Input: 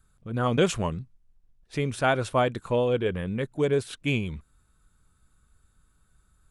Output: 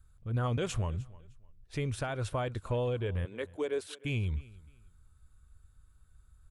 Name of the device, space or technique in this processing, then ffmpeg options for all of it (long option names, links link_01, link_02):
car stereo with a boomy subwoofer: -filter_complex "[0:a]asettb=1/sr,asplit=3[link_01][link_02][link_03];[link_01]atrim=end=3.254[link_04];[link_02]atrim=start=3.25:end=4.05,asetpts=PTS-STARTPTS,afade=type=in:duration=0.004:curve=qsin,afade=type=out:start_time=0.796:duration=0.004:curve=qsin,highpass=frequency=290:width=0.5412,highpass=frequency=290:width=1.3066[link_05];[link_03]atrim=start=4.046[link_06];[link_04][link_05]acrossfade=duration=0.004:curve1=hsin:curve2=qsin[link_07];[link_07][link_06]acrossfade=duration=0.004:curve1=qsin:curve2=hsin,lowshelf=frequency=130:width_type=q:width=1.5:gain=9,alimiter=limit=-19dB:level=0:latency=1:release=205,aecho=1:1:306|612:0.0841|0.021,volume=-5dB"